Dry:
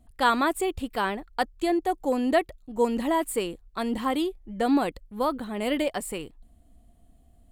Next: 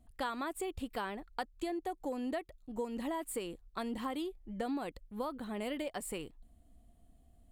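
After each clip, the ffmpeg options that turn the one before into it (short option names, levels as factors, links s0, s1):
-af "acompressor=threshold=0.0355:ratio=6,volume=0.531"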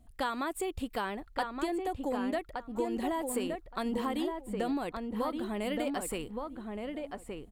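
-filter_complex "[0:a]asplit=2[s0][s1];[s1]adelay=1170,lowpass=f=1900:p=1,volume=0.631,asplit=2[s2][s3];[s3]adelay=1170,lowpass=f=1900:p=1,volume=0.17,asplit=2[s4][s5];[s5]adelay=1170,lowpass=f=1900:p=1,volume=0.17[s6];[s0][s2][s4][s6]amix=inputs=4:normalize=0,volume=1.58"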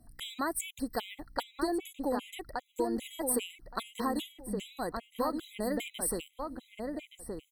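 -af "aeval=exprs='val(0)+0.000708*(sin(2*PI*60*n/s)+sin(2*PI*2*60*n/s)/2+sin(2*PI*3*60*n/s)/3+sin(2*PI*4*60*n/s)/4+sin(2*PI*5*60*n/s)/5)':c=same,aemphasis=mode=production:type=cd,afftfilt=real='re*gt(sin(2*PI*2.5*pts/sr)*(1-2*mod(floor(b*sr/1024/2000),2)),0)':imag='im*gt(sin(2*PI*2.5*pts/sr)*(1-2*mod(floor(b*sr/1024/2000),2)),0)':win_size=1024:overlap=0.75,volume=1.26"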